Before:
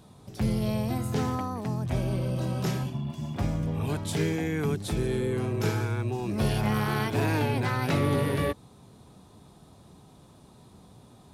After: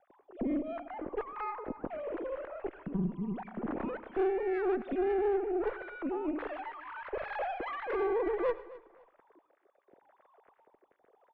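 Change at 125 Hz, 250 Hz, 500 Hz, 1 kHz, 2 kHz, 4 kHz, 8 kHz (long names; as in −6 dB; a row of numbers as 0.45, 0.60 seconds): −20.5 dB, −7.0 dB, −0.5 dB, −3.5 dB, −7.0 dB, below −15 dB, below −35 dB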